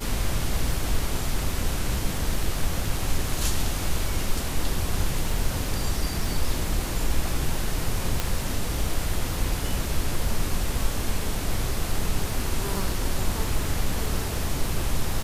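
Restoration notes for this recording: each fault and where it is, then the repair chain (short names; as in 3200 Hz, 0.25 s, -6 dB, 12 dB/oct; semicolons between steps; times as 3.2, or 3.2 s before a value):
crackle 24/s -30 dBFS
8.2 pop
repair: de-click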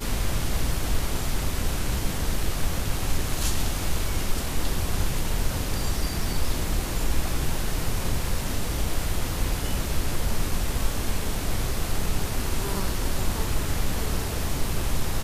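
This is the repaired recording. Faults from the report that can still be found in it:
none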